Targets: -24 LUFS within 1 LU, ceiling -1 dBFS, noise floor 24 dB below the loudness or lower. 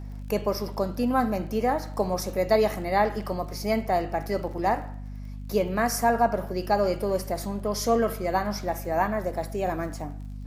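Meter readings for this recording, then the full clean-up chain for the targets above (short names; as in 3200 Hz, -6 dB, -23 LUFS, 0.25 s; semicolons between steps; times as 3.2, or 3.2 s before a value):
ticks 33/s; hum 50 Hz; harmonics up to 250 Hz; hum level -34 dBFS; loudness -26.5 LUFS; peak -9.5 dBFS; loudness target -24.0 LUFS
-> de-click; de-hum 50 Hz, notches 5; gain +2.5 dB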